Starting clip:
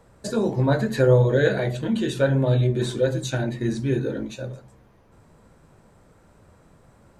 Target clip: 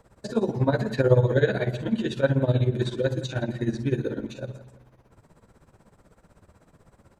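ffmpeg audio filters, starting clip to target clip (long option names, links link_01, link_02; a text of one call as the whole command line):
ffmpeg -i in.wav -filter_complex "[0:a]acrossover=split=5500[link_01][link_02];[link_02]acompressor=threshold=-55dB:ratio=4:attack=1:release=60[link_03];[link_01][link_03]amix=inputs=2:normalize=0,tremolo=f=16:d=0.83,asplit=2[link_04][link_05];[link_05]adelay=166,lowpass=frequency=3800:poles=1,volume=-16dB,asplit=2[link_06][link_07];[link_07]adelay=166,lowpass=frequency=3800:poles=1,volume=0.42,asplit=2[link_08][link_09];[link_09]adelay=166,lowpass=frequency=3800:poles=1,volume=0.42,asplit=2[link_10][link_11];[link_11]adelay=166,lowpass=frequency=3800:poles=1,volume=0.42[link_12];[link_04][link_06][link_08][link_10][link_12]amix=inputs=5:normalize=0,volume=1dB" out.wav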